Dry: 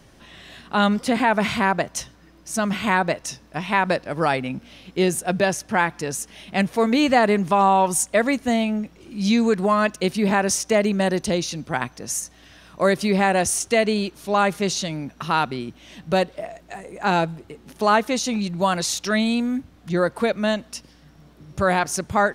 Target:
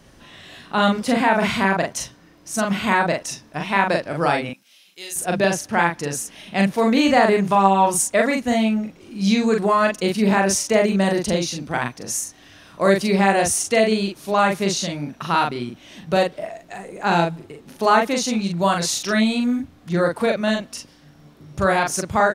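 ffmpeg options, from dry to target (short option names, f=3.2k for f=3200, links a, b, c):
-filter_complex "[0:a]asettb=1/sr,asplit=3[a][b][c];[a]atrim=end=4.494[d];[b]atrim=start=4.49:end=5.16,asetpts=PTS-STARTPTS,afade=t=in:d=0.004:c=qsin,afade=t=out:st=0.666:d=0.004:c=qsin,aderivative[e];[c]atrim=start=5.156[f];[d][e]acrossfade=d=0.004:c1=hsin:c2=qsin[g];[g][f]acrossfade=d=0.004:c1=qsin:c2=hsin,asplit=2[h][i];[i]adelay=41,volume=-3dB[j];[h][j]amix=inputs=2:normalize=0"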